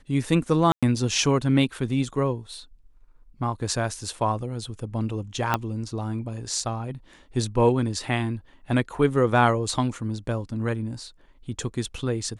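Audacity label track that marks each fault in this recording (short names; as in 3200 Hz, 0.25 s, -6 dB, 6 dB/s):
0.720000	0.830000	gap 0.106 s
5.540000	5.540000	pop -8 dBFS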